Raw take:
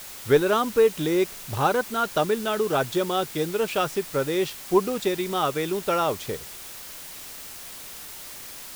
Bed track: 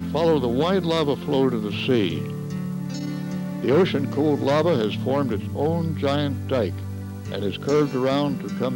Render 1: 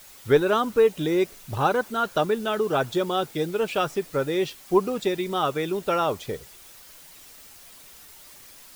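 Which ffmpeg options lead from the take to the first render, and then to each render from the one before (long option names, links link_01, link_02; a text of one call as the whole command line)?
ffmpeg -i in.wav -af "afftdn=noise_reduction=9:noise_floor=-40" out.wav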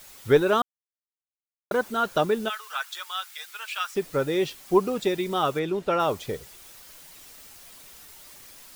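ffmpeg -i in.wav -filter_complex "[0:a]asplit=3[link_01][link_02][link_03];[link_01]afade=type=out:start_time=2.48:duration=0.02[link_04];[link_02]highpass=frequency=1200:width=0.5412,highpass=frequency=1200:width=1.3066,afade=type=in:start_time=2.48:duration=0.02,afade=type=out:start_time=3.94:duration=0.02[link_05];[link_03]afade=type=in:start_time=3.94:duration=0.02[link_06];[link_04][link_05][link_06]amix=inputs=3:normalize=0,asettb=1/sr,asplit=3[link_07][link_08][link_09];[link_07]atrim=end=5.594[link_10];[link_08]atrim=start=5.59:end=6,asetpts=PTS-STARTPTS,afade=type=in:duration=0.004:curve=qsin,afade=type=out:start_time=0.406:duration=0.004:curve=qsin,aemphasis=mode=reproduction:type=50kf[link_11];[link_09]atrim=start=5.996[link_12];[link_10][link_11]acrossfade=duration=0.004:curve1=hsin:curve2=qsin[link_13];[link_13][link_12]acrossfade=duration=0.004:curve1=qsin:curve2=hsin,asplit=3[link_14][link_15][link_16];[link_14]atrim=end=0.62,asetpts=PTS-STARTPTS,afade=type=out:start_time=0.616:duration=0.004:curve=hsin[link_17];[link_15]atrim=start=0.62:end=1.71,asetpts=PTS-STARTPTS,volume=0[link_18];[link_16]atrim=start=1.71,asetpts=PTS-STARTPTS,afade=type=in:duration=0.004:curve=hsin[link_19];[link_17][link_18][link_19]concat=n=3:v=0:a=1" out.wav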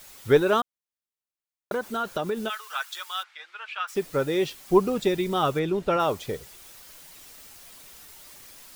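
ffmpeg -i in.wav -filter_complex "[0:a]asettb=1/sr,asplit=3[link_01][link_02][link_03];[link_01]atrim=end=0.604[link_04];[link_02]atrim=start=0.6:end=2.65,asetpts=PTS-STARTPTS,afade=type=in:duration=0.004:curve=qsin,afade=type=out:start_time=2.046:duration=0.004:curve=qsin,acompressor=threshold=-23dB:ratio=6:attack=3.2:release=140:knee=1:detection=peak[link_05];[link_03]atrim=start=2.646[link_06];[link_04][link_05]acrossfade=duration=0.004:curve1=hsin:curve2=qsin[link_07];[link_07][link_06]acrossfade=duration=0.004:curve1=qsin:curve2=hsin,asplit=3[link_08][link_09][link_10];[link_08]afade=type=out:start_time=3.22:duration=0.02[link_11];[link_09]lowpass=2500,afade=type=in:start_time=3.22:duration=0.02,afade=type=out:start_time=3.87:duration=0.02[link_12];[link_10]afade=type=in:start_time=3.87:duration=0.02[link_13];[link_11][link_12][link_13]amix=inputs=3:normalize=0,asettb=1/sr,asplit=3[link_14][link_15][link_16];[link_14]atrim=end=4.684[link_17];[link_15]atrim=start=4.68:end=5.97,asetpts=PTS-STARTPTS,afade=type=in:duration=0.004:curve=qsin,afade=type=out:start_time=1.286:duration=0.004:curve=qsin,lowshelf=frequency=140:gain=9.5[link_18];[link_16]atrim=start=5.966[link_19];[link_17][link_18]acrossfade=duration=0.004:curve1=hsin:curve2=qsin[link_20];[link_20][link_19]acrossfade=duration=0.004:curve1=qsin:curve2=hsin" out.wav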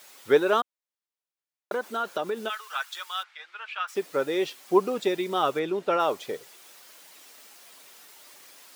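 ffmpeg -i in.wav -af "highpass=320,highshelf=frequency=6600:gain=-5" out.wav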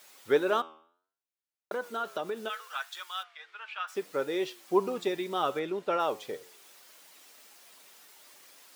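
ffmpeg -i in.wav -af "flanger=delay=7.9:depth=4.9:regen=87:speed=0.67:shape=triangular" out.wav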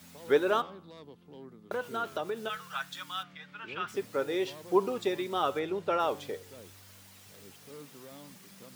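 ffmpeg -i in.wav -i bed.wav -filter_complex "[1:a]volume=-28.5dB[link_01];[0:a][link_01]amix=inputs=2:normalize=0" out.wav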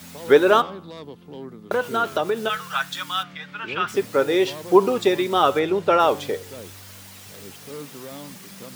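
ffmpeg -i in.wav -af "volume=11.5dB,alimiter=limit=-3dB:level=0:latency=1" out.wav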